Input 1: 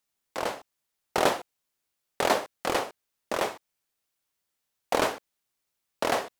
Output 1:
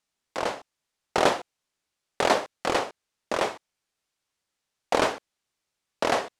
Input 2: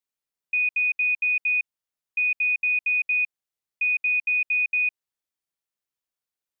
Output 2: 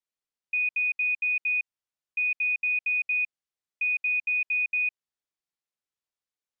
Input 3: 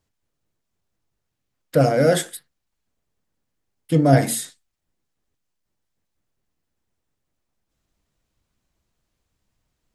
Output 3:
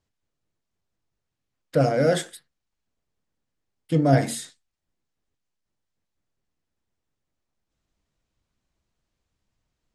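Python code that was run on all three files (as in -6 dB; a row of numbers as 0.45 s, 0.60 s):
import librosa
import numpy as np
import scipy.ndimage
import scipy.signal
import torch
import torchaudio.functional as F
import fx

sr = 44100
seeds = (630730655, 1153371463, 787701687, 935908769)

y = scipy.signal.sosfilt(scipy.signal.butter(2, 8100.0, 'lowpass', fs=sr, output='sos'), x)
y = y * 10.0 ** (-30 / 20.0) / np.sqrt(np.mean(np.square(y)))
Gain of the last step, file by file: +2.0 dB, -3.5 dB, -3.5 dB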